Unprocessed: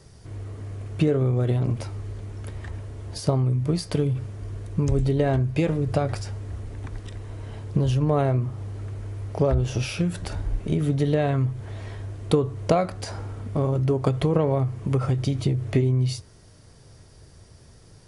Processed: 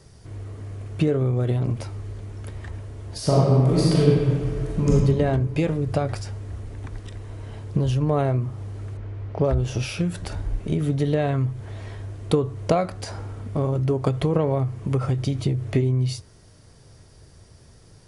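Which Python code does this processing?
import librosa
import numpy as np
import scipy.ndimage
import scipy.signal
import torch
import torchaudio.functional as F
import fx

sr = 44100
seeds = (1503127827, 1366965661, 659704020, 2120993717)

y = fx.reverb_throw(x, sr, start_s=3.17, length_s=1.73, rt60_s=1.9, drr_db=-6.5)
y = fx.lowpass(y, sr, hz=3300.0, slope=12, at=(8.97, 9.44))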